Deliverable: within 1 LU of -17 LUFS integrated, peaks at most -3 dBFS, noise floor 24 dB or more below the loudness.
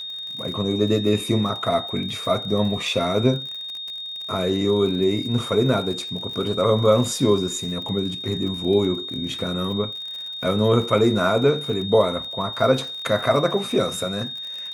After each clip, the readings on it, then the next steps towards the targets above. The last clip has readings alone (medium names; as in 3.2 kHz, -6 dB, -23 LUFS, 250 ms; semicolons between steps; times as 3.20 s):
tick rate 50 per s; steady tone 3.7 kHz; tone level -30 dBFS; loudness -22.0 LUFS; peak level -5.0 dBFS; loudness target -17.0 LUFS
-> de-click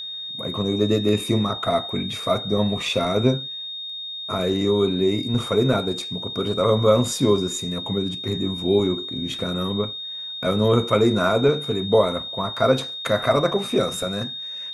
tick rate 0.27 per s; steady tone 3.7 kHz; tone level -30 dBFS
-> band-stop 3.7 kHz, Q 30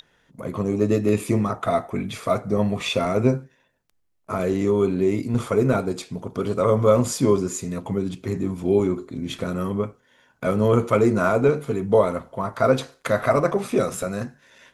steady tone not found; loudness -22.5 LUFS; peak level -4.5 dBFS; loudness target -17.0 LUFS
-> trim +5.5 dB; peak limiter -3 dBFS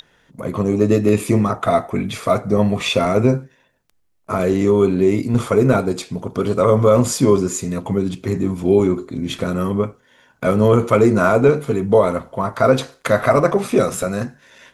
loudness -17.5 LUFS; peak level -3.0 dBFS; noise floor -59 dBFS